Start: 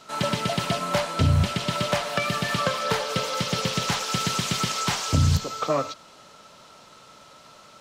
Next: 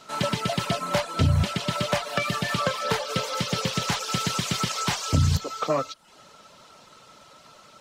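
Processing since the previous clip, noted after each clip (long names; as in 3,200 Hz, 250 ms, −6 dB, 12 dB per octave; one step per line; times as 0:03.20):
reverb reduction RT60 0.52 s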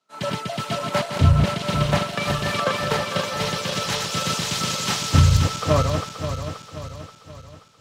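feedback delay that plays each chunk backwards 265 ms, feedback 82%, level −4 dB
multiband upward and downward expander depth 100%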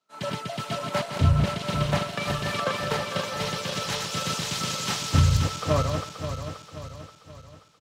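single-tap delay 130 ms −20.5 dB
level −4.5 dB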